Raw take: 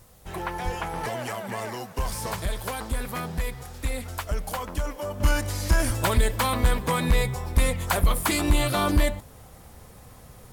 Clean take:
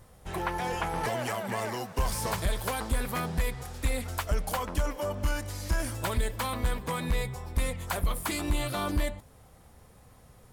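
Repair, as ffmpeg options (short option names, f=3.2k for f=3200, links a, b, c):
-filter_complex "[0:a]asplit=3[a][b][c];[a]afade=t=out:st=0.64:d=0.02[d];[b]highpass=f=140:w=0.5412,highpass=f=140:w=1.3066,afade=t=in:st=0.64:d=0.02,afade=t=out:st=0.76:d=0.02[e];[c]afade=t=in:st=0.76:d=0.02[f];[d][e][f]amix=inputs=3:normalize=0,asplit=3[g][h][i];[g]afade=t=out:st=5.86:d=0.02[j];[h]highpass=f=140:w=0.5412,highpass=f=140:w=1.3066,afade=t=in:st=5.86:d=0.02,afade=t=out:st=5.98:d=0.02[k];[i]afade=t=in:st=5.98:d=0.02[l];[j][k][l]amix=inputs=3:normalize=0,agate=range=-21dB:threshold=-39dB,asetnsamples=n=441:p=0,asendcmd='5.2 volume volume -7.5dB',volume=0dB"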